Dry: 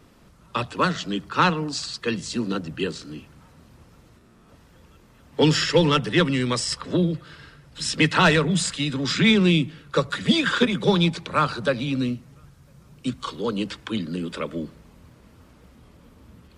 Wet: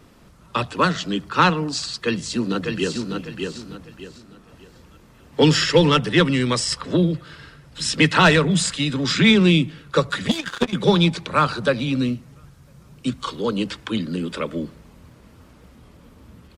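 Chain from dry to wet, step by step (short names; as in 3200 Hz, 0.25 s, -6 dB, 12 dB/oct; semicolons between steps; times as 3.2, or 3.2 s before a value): 1.97–3.15 echo throw 0.6 s, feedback 30%, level -4.5 dB; 10.28–10.73 power-law curve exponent 2; gain +3 dB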